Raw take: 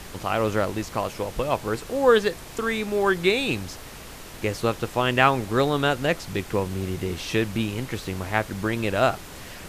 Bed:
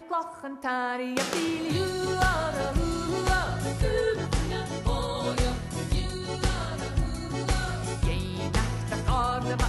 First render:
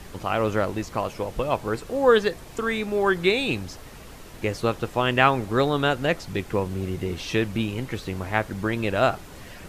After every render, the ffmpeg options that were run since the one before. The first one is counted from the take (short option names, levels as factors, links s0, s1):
-af "afftdn=nr=6:nf=-41"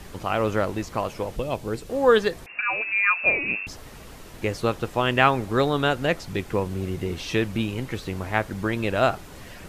-filter_complex "[0:a]asettb=1/sr,asplit=3[s0][s1][s2];[s0]atrim=end=1.364[s3];[s1]atrim=start=1.36:end=1.9,asetpts=PTS-STARTPTS,afade=t=in:d=0.004:c=qsin,afade=t=out:st=0.536:d=0.004:c=qsin,equalizer=f=1200:w=0.85:g=-8.5[s4];[s2]atrim=start=1.896[s5];[s3][s4]acrossfade=d=0.004:c1=hsin:c2=qsin[s6];[s6][s5]acrossfade=d=0.004:c1=qsin:c2=hsin,asettb=1/sr,asplit=3[s7][s8][s9];[s7]atrim=end=2.464[s10];[s8]atrim=start=2.46:end=3.67,asetpts=PTS-STARTPTS,afade=t=in:d=0.004:c=qsin,afade=t=out:st=1.206:d=0.004:c=qsin,lowpass=f=2400:t=q:w=0.5098,lowpass=f=2400:t=q:w=0.6013,lowpass=f=2400:t=q:w=0.9,lowpass=f=2400:t=q:w=2.563,afreqshift=-2800[s11];[s9]atrim=start=3.666[s12];[s10][s11]acrossfade=d=0.004:c1=hsin:c2=qsin[s13];[s13][s12]acrossfade=d=0.004:c1=qsin:c2=hsin"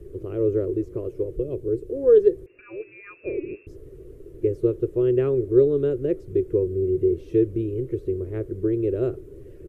-af "firequalizer=gain_entry='entry(130,0);entry(210,-16);entry(370,13);entry(770,-29);entry(1200,-23);entry(2400,-24);entry(4400,-29);entry(9600,-19)':delay=0.05:min_phase=1"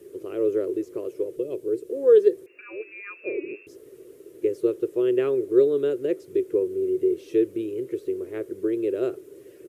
-af "highpass=310,highshelf=f=2200:g=10.5"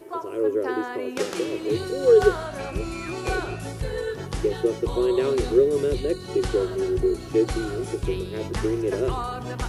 -filter_complex "[1:a]volume=0.668[s0];[0:a][s0]amix=inputs=2:normalize=0"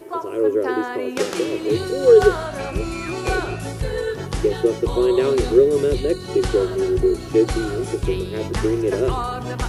-af "volume=1.68,alimiter=limit=0.708:level=0:latency=1"